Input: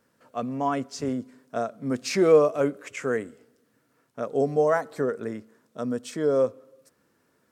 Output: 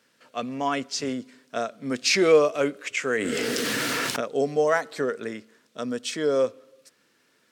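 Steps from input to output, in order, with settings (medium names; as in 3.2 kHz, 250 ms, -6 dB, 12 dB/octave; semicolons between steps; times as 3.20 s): frequency weighting D; 3.17–4.21 s: level flattener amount 100%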